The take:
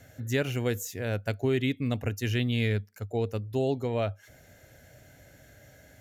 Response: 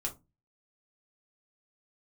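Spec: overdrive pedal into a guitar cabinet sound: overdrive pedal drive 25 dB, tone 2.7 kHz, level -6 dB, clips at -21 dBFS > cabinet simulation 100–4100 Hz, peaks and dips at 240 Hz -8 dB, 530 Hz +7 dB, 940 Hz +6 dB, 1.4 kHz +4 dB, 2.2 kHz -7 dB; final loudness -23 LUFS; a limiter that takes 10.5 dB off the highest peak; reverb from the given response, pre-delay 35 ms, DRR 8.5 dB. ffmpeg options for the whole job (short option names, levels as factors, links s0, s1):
-filter_complex "[0:a]alimiter=level_in=1.06:limit=0.0631:level=0:latency=1,volume=0.944,asplit=2[s0][s1];[1:a]atrim=start_sample=2205,adelay=35[s2];[s1][s2]afir=irnorm=-1:irlink=0,volume=0.316[s3];[s0][s3]amix=inputs=2:normalize=0,asplit=2[s4][s5];[s5]highpass=f=720:p=1,volume=17.8,asoftclip=type=tanh:threshold=0.0891[s6];[s4][s6]amix=inputs=2:normalize=0,lowpass=f=2700:p=1,volume=0.501,highpass=100,equalizer=f=240:t=q:w=4:g=-8,equalizer=f=530:t=q:w=4:g=7,equalizer=f=940:t=q:w=4:g=6,equalizer=f=1400:t=q:w=4:g=4,equalizer=f=2200:t=q:w=4:g=-7,lowpass=f=4100:w=0.5412,lowpass=f=4100:w=1.3066,volume=2.24"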